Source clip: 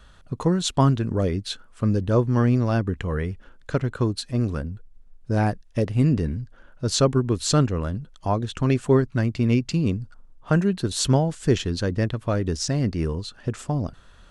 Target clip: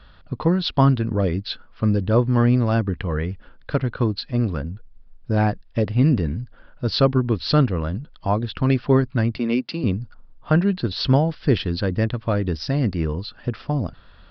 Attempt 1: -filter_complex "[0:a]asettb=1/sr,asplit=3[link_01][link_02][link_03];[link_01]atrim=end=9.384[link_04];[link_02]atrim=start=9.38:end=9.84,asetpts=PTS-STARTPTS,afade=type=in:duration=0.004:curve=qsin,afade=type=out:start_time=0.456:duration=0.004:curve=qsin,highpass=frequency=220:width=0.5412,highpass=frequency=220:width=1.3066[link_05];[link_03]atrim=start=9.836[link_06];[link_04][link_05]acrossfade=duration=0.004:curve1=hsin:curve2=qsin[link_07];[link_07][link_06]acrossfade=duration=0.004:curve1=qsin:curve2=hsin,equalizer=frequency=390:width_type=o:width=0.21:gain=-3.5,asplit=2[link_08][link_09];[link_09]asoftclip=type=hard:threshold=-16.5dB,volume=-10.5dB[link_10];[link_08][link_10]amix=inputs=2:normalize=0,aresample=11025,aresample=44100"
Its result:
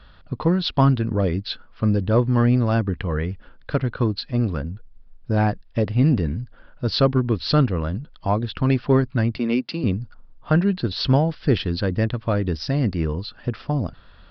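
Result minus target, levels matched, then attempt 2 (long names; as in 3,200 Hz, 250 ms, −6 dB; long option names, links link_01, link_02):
hard clipping: distortion +18 dB
-filter_complex "[0:a]asettb=1/sr,asplit=3[link_01][link_02][link_03];[link_01]atrim=end=9.384[link_04];[link_02]atrim=start=9.38:end=9.84,asetpts=PTS-STARTPTS,afade=type=in:duration=0.004:curve=qsin,afade=type=out:start_time=0.456:duration=0.004:curve=qsin,highpass=frequency=220:width=0.5412,highpass=frequency=220:width=1.3066[link_05];[link_03]atrim=start=9.836[link_06];[link_04][link_05]acrossfade=duration=0.004:curve1=hsin:curve2=qsin[link_07];[link_07][link_06]acrossfade=duration=0.004:curve1=qsin:curve2=hsin,equalizer=frequency=390:width_type=o:width=0.21:gain=-3.5,asplit=2[link_08][link_09];[link_09]asoftclip=type=hard:threshold=-10dB,volume=-10.5dB[link_10];[link_08][link_10]amix=inputs=2:normalize=0,aresample=11025,aresample=44100"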